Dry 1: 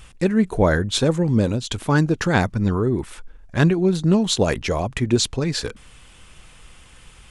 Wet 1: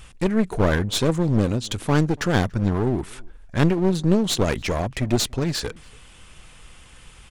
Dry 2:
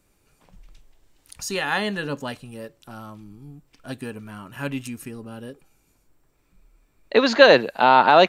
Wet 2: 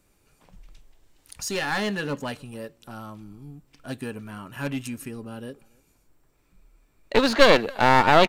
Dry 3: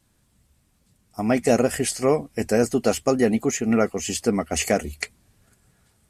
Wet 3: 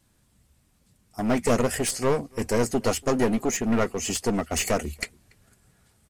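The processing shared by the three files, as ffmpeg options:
-filter_complex "[0:a]aeval=exprs='clip(val(0),-1,0.0596)':c=same,asplit=2[a][b];[b]adelay=285.7,volume=-27dB,highshelf=f=4k:g=-6.43[c];[a][c]amix=inputs=2:normalize=0"

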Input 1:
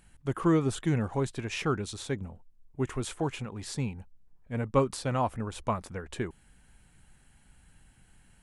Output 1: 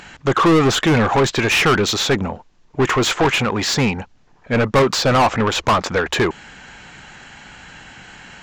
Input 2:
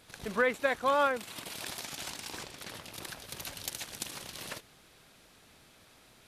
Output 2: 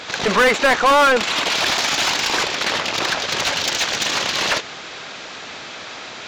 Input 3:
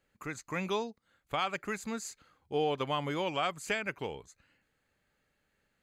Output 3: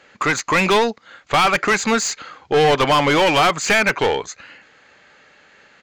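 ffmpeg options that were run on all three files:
-filter_complex "[0:a]aresample=16000,aresample=44100,asplit=2[a][b];[b]highpass=f=720:p=1,volume=30dB,asoftclip=type=tanh:threshold=-12.5dB[c];[a][c]amix=inputs=2:normalize=0,lowpass=f=3.8k:p=1,volume=-6dB,volume=6dB"

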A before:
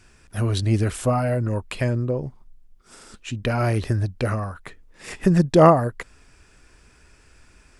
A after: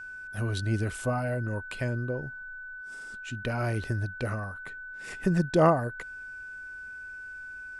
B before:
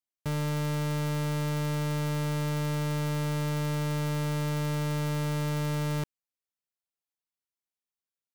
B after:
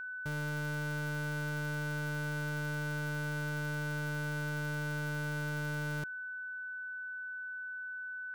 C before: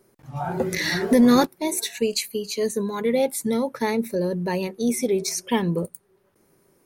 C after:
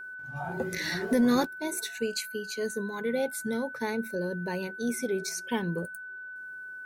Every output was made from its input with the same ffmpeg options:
-af "aeval=exprs='val(0)+0.0282*sin(2*PI*1500*n/s)':c=same,volume=-8dB"

